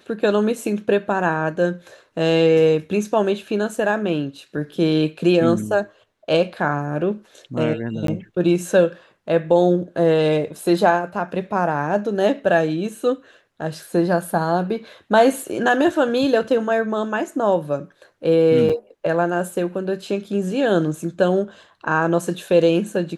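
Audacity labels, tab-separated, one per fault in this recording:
8.070000	8.080000	dropout 13 ms
18.690000	18.700000	dropout 6.1 ms

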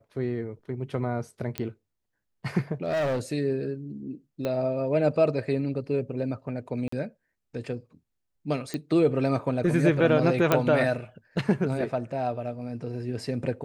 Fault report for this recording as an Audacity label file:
1.580000	1.580000	pop -13 dBFS
2.740000	3.200000	clipped -23.5 dBFS
4.450000	4.450000	pop -17 dBFS
6.880000	6.920000	dropout 44 ms
8.740000	8.740000	pop -17 dBFS
10.520000	10.520000	pop -7 dBFS

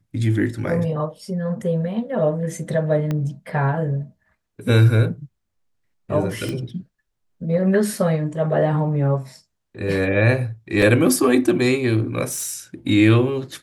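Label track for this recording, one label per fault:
3.110000	3.110000	pop -13 dBFS
6.490000	6.490000	pop -15 dBFS
10.820000	10.820000	dropout 4.1 ms
12.300000	12.570000	clipped -23 dBFS

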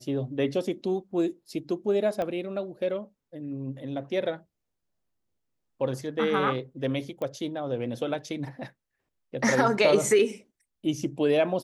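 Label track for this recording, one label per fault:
2.220000	2.220000	pop -19 dBFS
7.220000	7.220000	pop -22 dBFS

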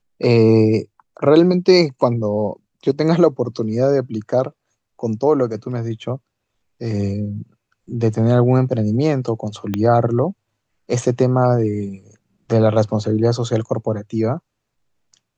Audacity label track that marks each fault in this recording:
9.740000	9.740000	pop -9 dBFS

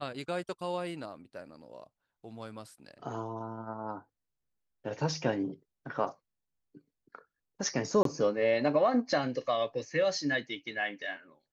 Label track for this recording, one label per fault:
8.030000	8.050000	dropout 23 ms

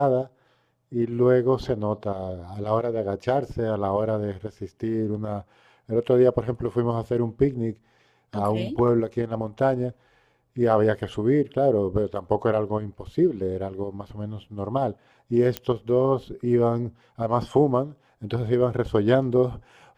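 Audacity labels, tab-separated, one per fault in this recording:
15.570000	15.570000	pop -11 dBFS

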